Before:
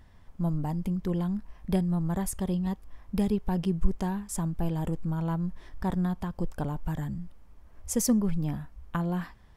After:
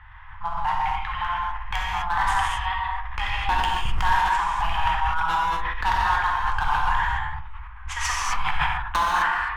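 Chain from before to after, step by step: median filter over 3 samples; Chebyshev band-stop 110–800 Hz, order 4; low-pass opened by the level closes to 1900 Hz, open at -24 dBFS; band shelf 1700 Hz +14 dB 2.3 oct; hard clip -23 dBFS, distortion -9 dB; narrowing echo 74 ms, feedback 61%, band-pass 440 Hz, level -7 dB; non-linear reverb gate 0.28 s flat, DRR -4 dB; sustainer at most 39 dB/s; gain +4 dB

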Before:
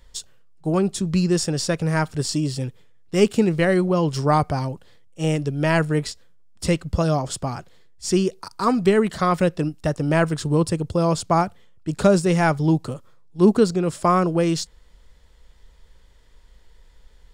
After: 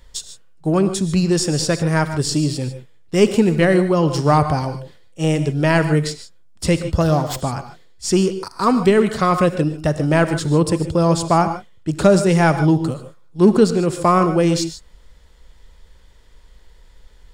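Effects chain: in parallel at -12 dB: hard clip -17.5 dBFS, distortion -10 dB; on the sum: non-linear reverb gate 0.17 s rising, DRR 10 dB; 7–7.41 running maximum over 3 samples; gain +2 dB

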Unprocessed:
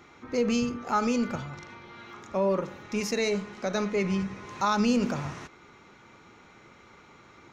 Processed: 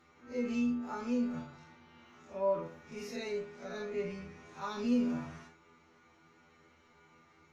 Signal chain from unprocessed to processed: time blur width 86 ms; dynamic EQ 6900 Hz, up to -5 dB, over -54 dBFS, Q 0.97; metallic resonator 80 Hz, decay 0.32 s, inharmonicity 0.002

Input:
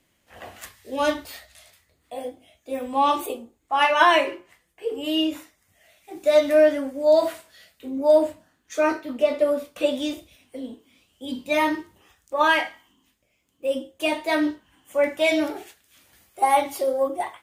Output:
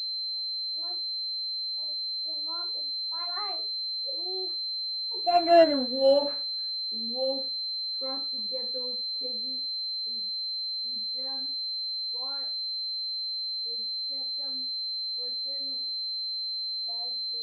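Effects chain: Doppler pass-by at 5.73, 55 m/s, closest 14 m; low-pass opened by the level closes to 1000 Hz, open at -25 dBFS; pulse-width modulation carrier 4100 Hz

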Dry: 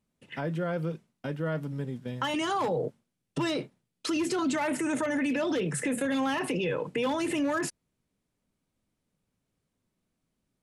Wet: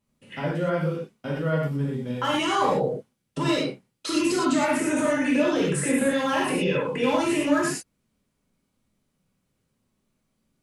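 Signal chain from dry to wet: non-linear reverb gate 0.14 s flat, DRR -5 dB

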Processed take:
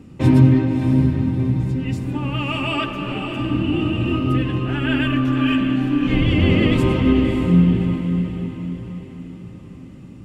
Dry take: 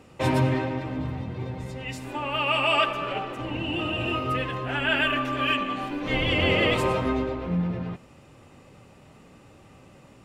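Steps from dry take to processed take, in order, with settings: resonant low shelf 390 Hz +12 dB, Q 1.5; on a send: diffused feedback echo 0.591 s, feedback 43%, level -7 dB; on the sum: gain -1.5 dB

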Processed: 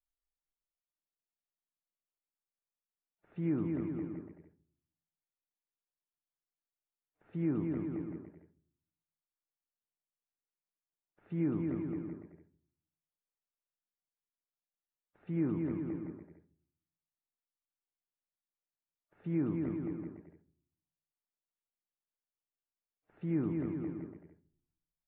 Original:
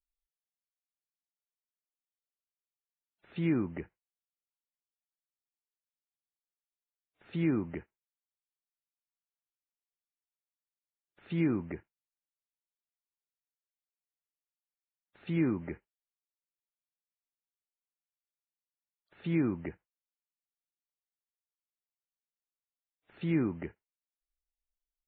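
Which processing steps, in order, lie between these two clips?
LPF 1300 Hz 12 dB/oct; bouncing-ball echo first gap 0.22 s, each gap 0.75×, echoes 5; shoebox room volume 690 m³, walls furnished, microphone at 0.51 m; gain -4.5 dB

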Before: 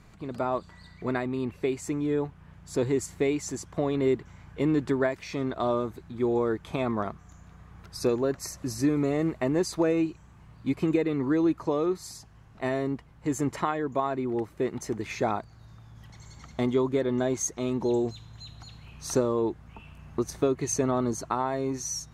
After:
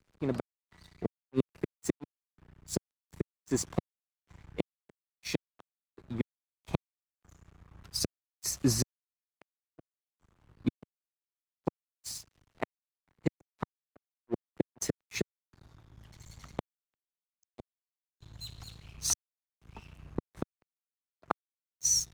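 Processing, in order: flipped gate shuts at -22 dBFS, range -38 dB; crossover distortion -50 dBFS; three-band expander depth 40%; gain +4.5 dB

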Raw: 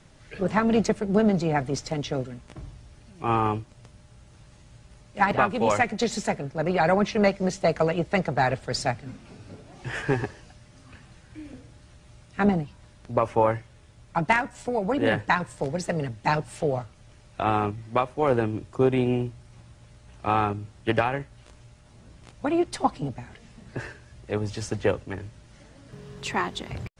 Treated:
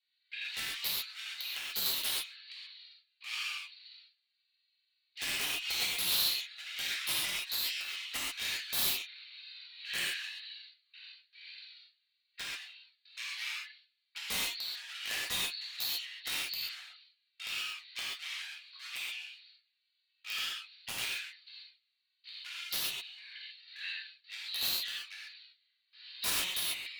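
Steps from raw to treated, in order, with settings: nonlinear frequency compression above 3600 Hz 4:1; gate with hold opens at -38 dBFS; in parallel at +2 dB: compressor 12:1, threshold -34 dBFS, peak gain reduction 19.5 dB; on the sum: hard clip -21.5 dBFS, distortion -7 dB; inverse Chebyshev high-pass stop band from 420 Hz, stop band 80 dB; envelope flanger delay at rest 2.7 ms, full sweep at -32.5 dBFS; wrapped overs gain 30 dB; non-linear reverb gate 0.16 s flat, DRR -6.5 dB; added harmonics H 4 -35 dB, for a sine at -17 dBFS; mismatched tape noise reduction decoder only

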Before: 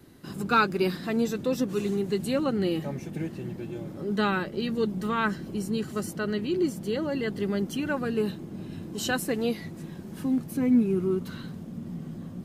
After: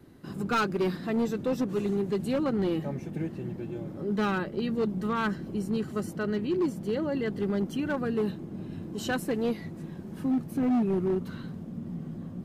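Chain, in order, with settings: high shelf 2400 Hz -8.5 dB; hard clip -22 dBFS, distortion -14 dB

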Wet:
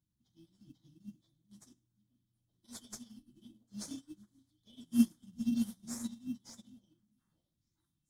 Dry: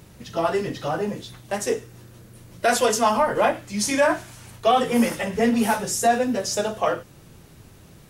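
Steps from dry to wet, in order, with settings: brick-wall FIR band-stop 350–3000 Hz; in parallel at -9 dB: sample-and-hold 15×; on the sum: delay with a stepping band-pass 0.435 s, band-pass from 190 Hz, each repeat 1.4 oct, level -6 dB; upward expander 2.5:1, over -34 dBFS; gain -7 dB

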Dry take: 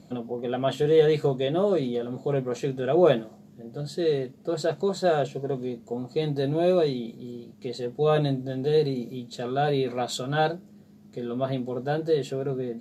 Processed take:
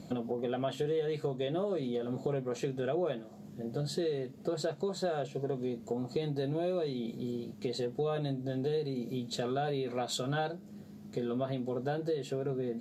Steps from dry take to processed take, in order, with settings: compressor 6:1, threshold -34 dBFS, peak gain reduction 18.5 dB; gain +3 dB

